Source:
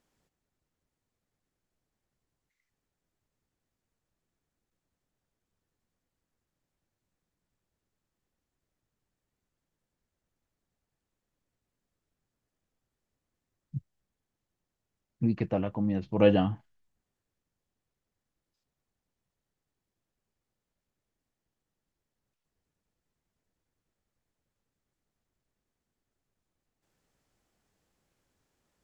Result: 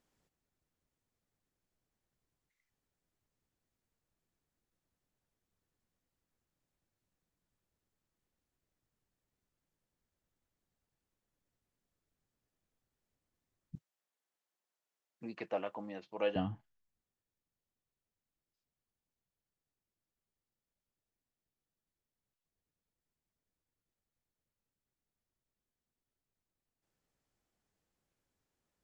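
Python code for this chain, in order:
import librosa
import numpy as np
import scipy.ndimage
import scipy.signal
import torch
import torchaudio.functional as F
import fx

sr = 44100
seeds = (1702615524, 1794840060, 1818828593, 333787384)

y = fx.rider(x, sr, range_db=10, speed_s=0.5)
y = fx.highpass(y, sr, hz=560.0, slope=12, at=(13.75, 16.36))
y = y * 10.0 ** (-4.5 / 20.0)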